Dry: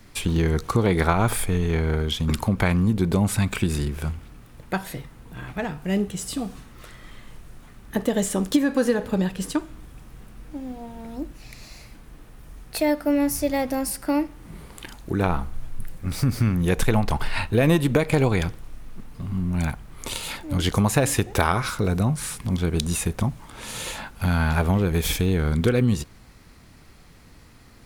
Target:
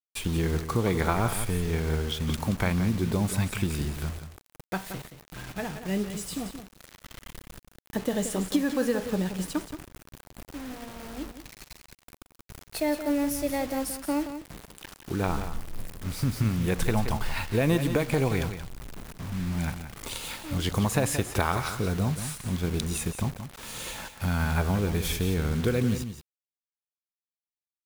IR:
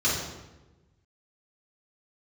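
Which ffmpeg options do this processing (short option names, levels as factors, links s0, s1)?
-af "acrusher=bits=5:mix=0:aa=0.000001,aecho=1:1:176:0.316,volume=0.531"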